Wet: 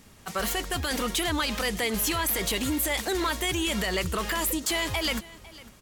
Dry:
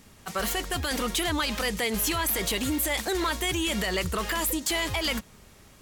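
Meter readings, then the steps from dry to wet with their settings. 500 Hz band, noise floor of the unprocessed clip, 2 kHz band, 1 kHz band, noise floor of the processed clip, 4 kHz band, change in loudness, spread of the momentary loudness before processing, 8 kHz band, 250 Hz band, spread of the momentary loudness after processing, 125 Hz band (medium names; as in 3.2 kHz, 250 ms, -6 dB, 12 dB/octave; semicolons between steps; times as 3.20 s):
0.0 dB, -54 dBFS, 0.0 dB, 0.0 dB, -53 dBFS, 0.0 dB, 0.0 dB, 3 LU, 0.0 dB, 0.0 dB, 5 LU, 0.0 dB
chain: delay 502 ms -20 dB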